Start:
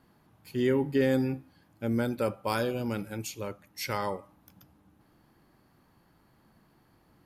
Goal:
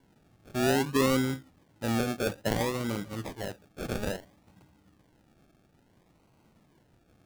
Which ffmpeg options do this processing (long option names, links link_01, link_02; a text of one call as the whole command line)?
ffmpeg -i in.wav -af "acrusher=samples=35:mix=1:aa=0.000001:lfo=1:lforange=21:lforate=0.59" out.wav